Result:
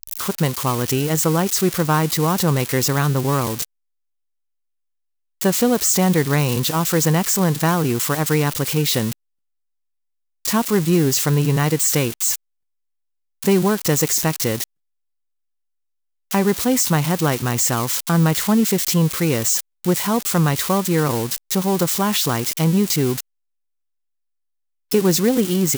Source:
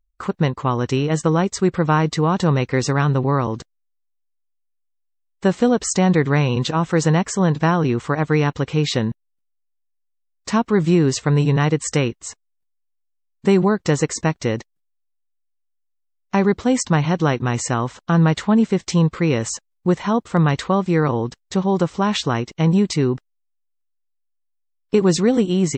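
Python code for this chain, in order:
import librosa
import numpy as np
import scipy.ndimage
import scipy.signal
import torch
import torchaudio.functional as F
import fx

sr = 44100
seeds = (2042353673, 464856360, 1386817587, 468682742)

y = x + 0.5 * 10.0 ** (-13.0 / 20.0) * np.diff(np.sign(x), prepend=np.sign(x[:1]))
y = F.gain(torch.from_numpy(y), -1.0).numpy()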